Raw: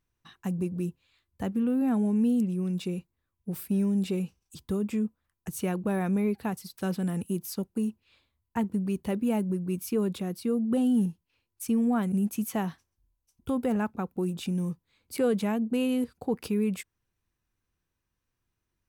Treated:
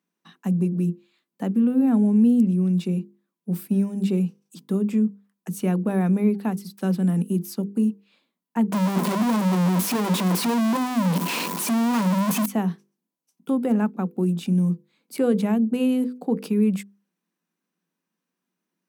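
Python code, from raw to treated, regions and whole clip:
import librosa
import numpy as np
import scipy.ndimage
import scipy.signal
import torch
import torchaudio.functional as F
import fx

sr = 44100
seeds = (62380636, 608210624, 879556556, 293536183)

y = fx.chain(x, sr, fx.clip_1bit(),
    fx.peak_eq(hz=1000.0, db=12.0, octaves=0.22), at=(8.72, 12.46))
y = scipy.signal.sosfilt(scipy.signal.cheby1(6, 1.0, 170.0, 'highpass', fs=sr, output='sos'), y)
y = fx.low_shelf(y, sr, hz=280.0, db=11.5)
y = fx.hum_notches(y, sr, base_hz=50, count=10)
y = y * 10.0 ** (1.5 / 20.0)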